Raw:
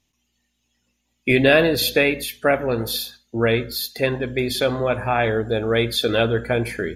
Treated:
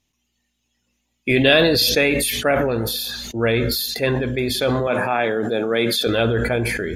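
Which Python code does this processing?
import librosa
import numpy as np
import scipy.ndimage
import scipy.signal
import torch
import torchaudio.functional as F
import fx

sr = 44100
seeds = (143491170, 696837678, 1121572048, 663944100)

y = fx.peak_eq(x, sr, hz=fx.line((1.39, 2800.0), (2.26, 9000.0)), db=12.0, octaves=0.33, at=(1.39, 2.26), fade=0.02)
y = fx.highpass(y, sr, hz=160.0, slope=24, at=(4.87, 6.07))
y = fx.sustainer(y, sr, db_per_s=24.0)
y = F.gain(torch.from_numpy(y), -1.0).numpy()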